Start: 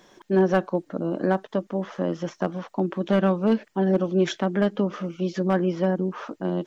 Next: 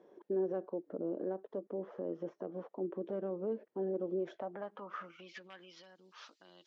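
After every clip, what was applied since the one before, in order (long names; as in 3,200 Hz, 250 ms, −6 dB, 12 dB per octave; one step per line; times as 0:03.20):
downward compressor 2 to 1, threshold −29 dBFS, peak gain reduction 8 dB
brickwall limiter −23.5 dBFS, peak gain reduction 8.5 dB
band-pass filter sweep 430 Hz → 4,400 Hz, 0:04.13–0:05.82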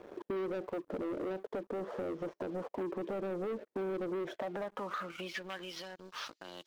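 leveller curve on the samples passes 3
downward compressor 3 to 1, threshold −39 dBFS, peak gain reduction 8 dB
level +1.5 dB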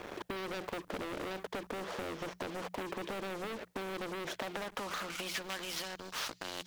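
mains-hum notches 60/120/180 Hz
every bin compressed towards the loudest bin 2 to 1
level +4.5 dB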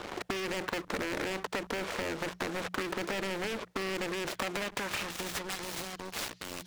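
phase distortion by the signal itself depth 0.9 ms
high-shelf EQ 8,000 Hz −11 dB
level +6.5 dB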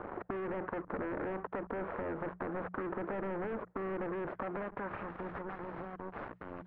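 low-pass filter 1,500 Hz 24 dB per octave
in parallel at +1 dB: brickwall limiter −31.5 dBFS, peak gain reduction 9 dB
on the sum: level −7 dB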